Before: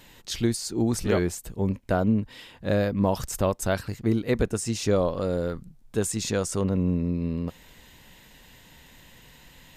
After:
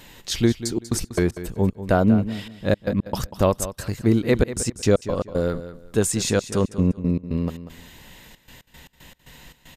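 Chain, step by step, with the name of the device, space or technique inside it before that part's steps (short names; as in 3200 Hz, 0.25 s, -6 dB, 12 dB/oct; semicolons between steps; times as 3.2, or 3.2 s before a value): trance gate with a delay (step gate "xxxx.x.x.x.xx.x" 115 bpm -60 dB; feedback echo 0.191 s, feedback 24%, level -13 dB); gain +5.5 dB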